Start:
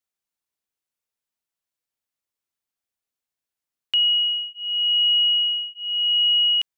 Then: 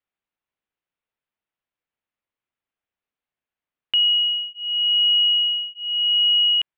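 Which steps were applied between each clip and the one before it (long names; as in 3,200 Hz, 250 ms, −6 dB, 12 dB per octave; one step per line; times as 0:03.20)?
low-pass filter 3,100 Hz 24 dB per octave
level +3 dB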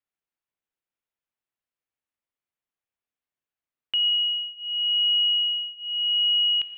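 reverb whose tail is shaped and stops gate 270 ms flat, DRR 9.5 dB
level −5.5 dB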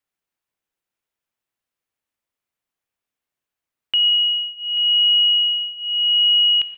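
repeating echo 836 ms, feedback 26%, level −15 dB
level +6 dB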